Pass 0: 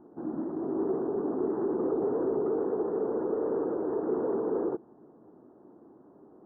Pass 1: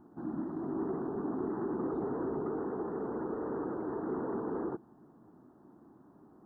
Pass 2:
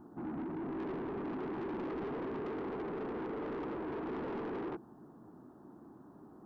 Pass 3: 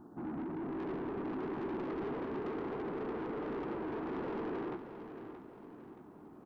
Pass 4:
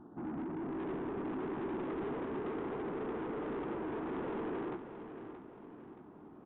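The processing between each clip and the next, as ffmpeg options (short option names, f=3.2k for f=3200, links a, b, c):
-af "equalizer=f=480:t=o:w=1.4:g=-13.5,volume=3.5dB"
-af "asoftclip=type=tanh:threshold=-40dB,volume=3.5dB"
-af "aecho=1:1:626|1252|1878|2504|3130:0.316|0.136|0.0585|0.0251|0.0108"
-af "aresample=8000,aresample=44100"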